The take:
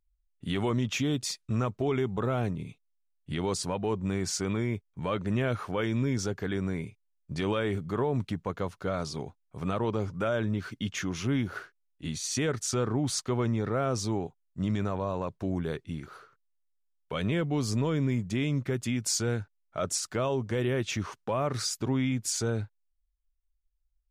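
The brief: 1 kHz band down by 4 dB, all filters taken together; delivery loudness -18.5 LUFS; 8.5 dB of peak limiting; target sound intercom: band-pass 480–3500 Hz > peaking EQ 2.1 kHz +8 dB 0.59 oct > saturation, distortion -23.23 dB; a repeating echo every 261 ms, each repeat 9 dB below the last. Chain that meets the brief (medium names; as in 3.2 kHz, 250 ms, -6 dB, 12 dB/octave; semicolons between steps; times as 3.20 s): peaking EQ 1 kHz -6 dB; peak limiter -27 dBFS; band-pass 480–3500 Hz; peaking EQ 2.1 kHz +8 dB 0.59 oct; feedback delay 261 ms, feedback 35%, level -9 dB; saturation -27 dBFS; trim +23 dB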